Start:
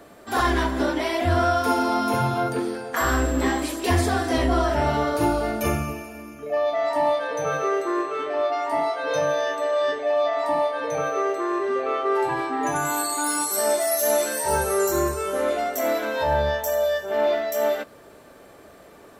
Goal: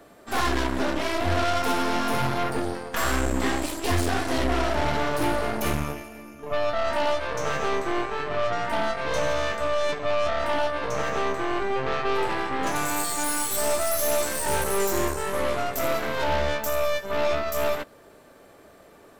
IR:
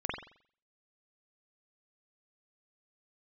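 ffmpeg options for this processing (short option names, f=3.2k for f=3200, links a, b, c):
-af "asoftclip=type=tanh:threshold=-11.5dB,aeval=exprs='0.224*(cos(1*acos(clip(val(0)/0.224,-1,1)))-cos(1*PI/2))+0.0562*(cos(6*acos(clip(val(0)/0.224,-1,1)))-cos(6*PI/2))':c=same,volume=-3.5dB"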